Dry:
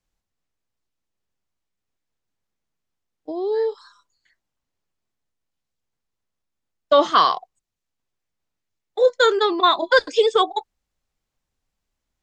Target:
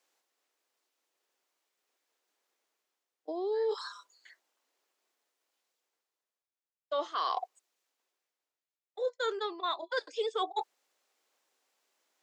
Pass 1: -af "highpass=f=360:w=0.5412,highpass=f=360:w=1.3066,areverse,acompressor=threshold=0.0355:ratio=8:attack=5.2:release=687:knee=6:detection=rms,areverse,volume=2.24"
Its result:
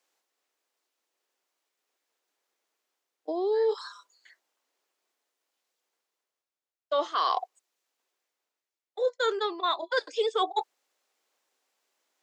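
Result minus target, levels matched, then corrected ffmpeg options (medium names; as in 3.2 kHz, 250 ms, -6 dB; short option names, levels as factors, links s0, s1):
compression: peak gain reduction -5.5 dB
-af "highpass=f=360:w=0.5412,highpass=f=360:w=1.3066,areverse,acompressor=threshold=0.0168:ratio=8:attack=5.2:release=687:knee=6:detection=rms,areverse,volume=2.24"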